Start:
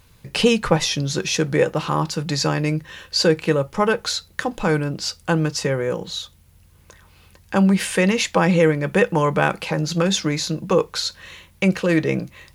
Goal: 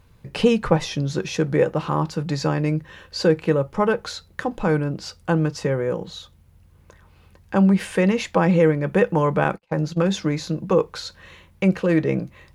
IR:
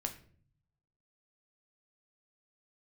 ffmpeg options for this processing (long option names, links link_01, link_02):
-filter_complex "[0:a]asettb=1/sr,asplit=3[link_01][link_02][link_03];[link_01]atrim=end=9.444[link_04];[link_02]atrim=start=9.44:end=10.08,asetpts=PTS-STARTPTS,afade=type=in:duration=0.004:curve=qsin,afade=type=out:start_time=0.636:duration=0.004:curve=qsin,agate=range=-47dB:threshold=-24dB:ratio=16:detection=peak[link_05];[link_03]atrim=start=10.076[link_06];[link_04][link_05]acrossfade=duration=0.004:curve1=hsin:curve2=qsin[link_07];[link_07][link_06]acrossfade=duration=0.004:curve1=qsin:curve2=hsin,highshelf=frequency=2200:gain=-11.5"